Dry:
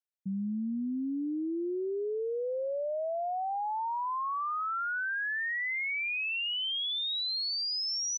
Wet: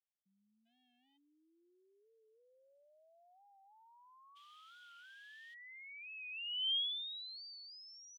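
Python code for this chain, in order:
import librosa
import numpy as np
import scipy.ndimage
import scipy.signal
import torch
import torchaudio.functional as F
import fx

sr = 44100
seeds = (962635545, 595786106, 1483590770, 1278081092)

y = fx.clip_hard(x, sr, threshold_db=-34.0, at=(0.65, 1.16), fade=0.02)
y = fx.quant_dither(y, sr, seeds[0], bits=8, dither='triangular', at=(4.35, 5.53), fade=0.02)
y = fx.bandpass_q(y, sr, hz=3200.0, q=11.0)
y = fx.record_warp(y, sr, rpm=45.0, depth_cents=100.0)
y = y * librosa.db_to_amplitude(-1.0)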